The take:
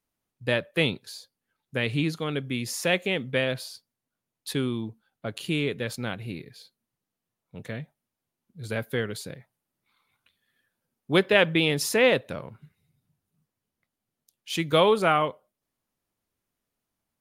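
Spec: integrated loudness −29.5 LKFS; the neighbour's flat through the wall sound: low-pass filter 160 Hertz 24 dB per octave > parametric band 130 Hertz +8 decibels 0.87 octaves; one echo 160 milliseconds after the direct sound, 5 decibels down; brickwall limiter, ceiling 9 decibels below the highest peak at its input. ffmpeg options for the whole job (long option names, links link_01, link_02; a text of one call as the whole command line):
ffmpeg -i in.wav -af "alimiter=limit=-13.5dB:level=0:latency=1,lowpass=frequency=160:width=0.5412,lowpass=frequency=160:width=1.3066,equalizer=frequency=130:width_type=o:width=0.87:gain=8,aecho=1:1:160:0.562,volume=3.5dB" out.wav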